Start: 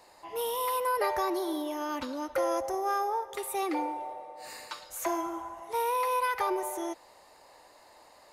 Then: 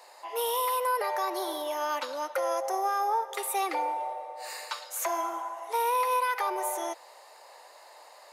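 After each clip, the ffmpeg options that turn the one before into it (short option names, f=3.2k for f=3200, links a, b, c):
-af "highpass=f=470:w=0.5412,highpass=f=470:w=1.3066,alimiter=level_in=0.5dB:limit=-24dB:level=0:latency=1:release=168,volume=-0.5dB,volume=5dB"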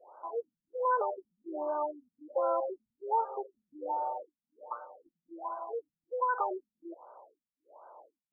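-af "afftfilt=real='re*lt(b*sr/1024,210*pow(1600/210,0.5+0.5*sin(2*PI*1.3*pts/sr)))':imag='im*lt(b*sr/1024,210*pow(1600/210,0.5+0.5*sin(2*PI*1.3*pts/sr)))':win_size=1024:overlap=0.75"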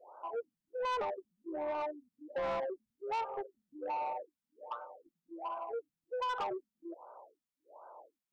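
-af "asoftclip=type=tanh:threshold=-31.5dB"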